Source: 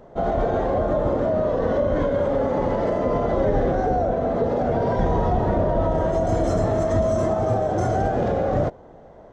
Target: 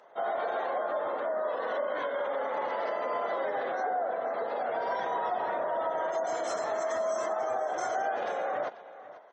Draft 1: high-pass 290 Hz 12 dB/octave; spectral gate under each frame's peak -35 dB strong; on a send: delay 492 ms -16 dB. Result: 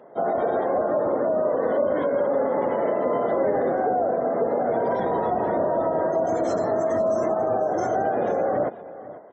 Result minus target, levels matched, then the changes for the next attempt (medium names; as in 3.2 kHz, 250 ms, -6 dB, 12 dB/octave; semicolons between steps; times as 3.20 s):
250 Hz band +10.0 dB
change: high-pass 990 Hz 12 dB/octave